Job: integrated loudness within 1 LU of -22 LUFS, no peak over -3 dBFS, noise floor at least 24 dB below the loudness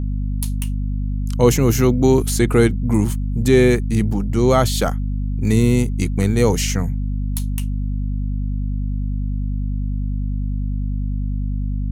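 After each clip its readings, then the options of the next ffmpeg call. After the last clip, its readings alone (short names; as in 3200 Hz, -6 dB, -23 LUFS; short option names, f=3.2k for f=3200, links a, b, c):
hum 50 Hz; harmonics up to 250 Hz; hum level -19 dBFS; loudness -20.0 LUFS; peak -1.0 dBFS; loudness target -22.0 LUFS
-> -af "bandreject=f=50:t=h:w=6,bandreject=f=100:t=h:w=6,bandreject=f=150:t=h:w=6,bandreject=f=200:t=h:w=6,bandreject=f=250:t=h:w=6"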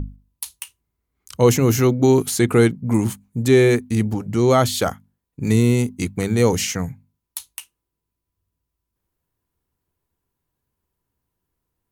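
hum none; loudness -18.5 LUFS; peak -2.5 dBFS; loudness target -22.0 LUFS
-> -af "volume=-3.5dB"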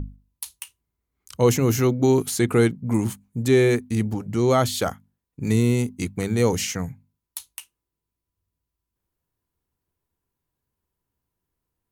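loudness -22.0 LUFS; peak -6.0 dBFS; noise floor -85 dBFS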